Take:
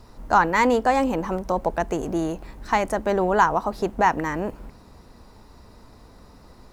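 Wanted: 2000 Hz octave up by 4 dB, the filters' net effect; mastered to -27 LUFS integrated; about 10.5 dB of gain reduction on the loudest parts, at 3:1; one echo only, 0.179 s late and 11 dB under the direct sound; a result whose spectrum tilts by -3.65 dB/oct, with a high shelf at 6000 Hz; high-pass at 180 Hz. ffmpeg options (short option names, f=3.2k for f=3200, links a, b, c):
-af "highpass=180,equalizer=f=2k:t=o:g=4.5,highshelf=f=6k:g=4.5,acompressor=threshold=-26dB:ratio=3,aecho=1:1:179:0.282,volume=2dB"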